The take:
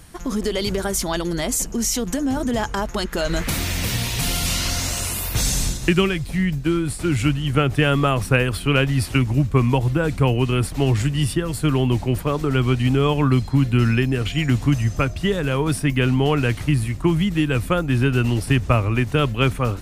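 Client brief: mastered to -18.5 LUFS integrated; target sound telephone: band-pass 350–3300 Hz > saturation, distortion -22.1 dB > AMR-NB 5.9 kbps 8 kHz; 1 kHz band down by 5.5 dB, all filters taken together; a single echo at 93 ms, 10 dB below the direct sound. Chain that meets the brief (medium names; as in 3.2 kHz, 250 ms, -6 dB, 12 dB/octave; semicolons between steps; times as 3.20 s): band-pass 350–3300 Hz; peaking EQ 1 kHz -7.5 dB; delay 93 ms -10 dB; saturation -13 dBFS; trim +10.5 dB; AMR-NB 5.9 kbps 8 kHz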